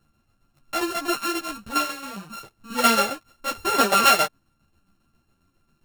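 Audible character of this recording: a buzz of ramps at a fixed pitch in blocks of 32 samples; tremolo saw down 7.4 Hz, depth 60%; a shimmering, thickened sound

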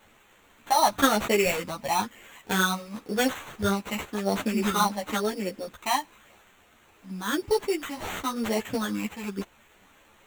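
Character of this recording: a quantiser's noise floor 10-bit, dither triangular; phasing stages 8, 0.96 Hz, lowest notch 420–1500 Hz; aliases and images of a low sample rate 5000 Hz, jitter 0%; a shimmering, thickened sound

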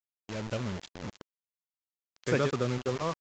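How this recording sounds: a quantiser's noise floor 6-bit, dither none; AAC

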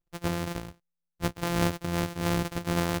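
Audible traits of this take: a buzz of ramps at a fixed pitch in blocks of 256 samples; noise-modulated level

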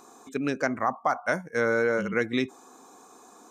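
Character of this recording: noise floor -53 dBFS; spectral tilt -4.0 dB/oct

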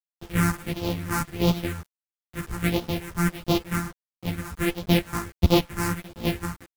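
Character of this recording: a buzz of ramps at a fixed pitch in blocks of 256 samples; phasing stages 4, 1.5 Hz, lowest notch 550–1700 Hz; a quantiser's noise floor 8-bit, dither none; a shimmering, thickened sound

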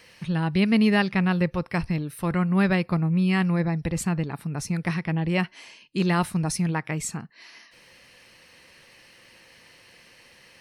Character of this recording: noise floor -54 dBFS; spectral tilt -6.0 dB/oct

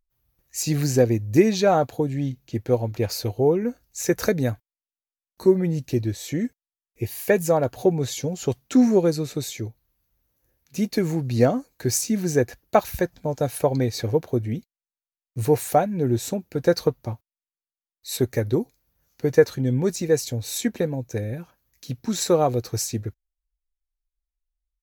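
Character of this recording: noise floor -96 dBFS; spectral tilt -5.5 dB/oct

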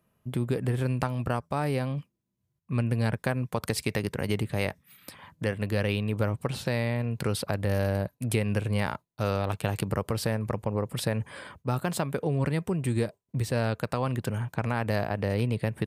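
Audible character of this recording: noise floor -79 dBFS; spectral tilt -6.0 dB/oct

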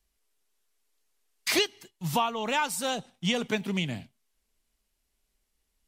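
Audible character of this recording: noise floor -78 dBFS; spectral tilt -3.5 dB/oct

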